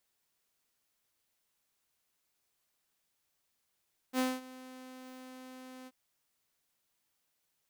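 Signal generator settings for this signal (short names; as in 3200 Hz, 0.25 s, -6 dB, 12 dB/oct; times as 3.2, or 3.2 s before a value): ADSR saw 257 Hz, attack 58 ms, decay 0.217 s, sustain -20.5 dB, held 1.74 s, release 41 ms -24.5 dBFS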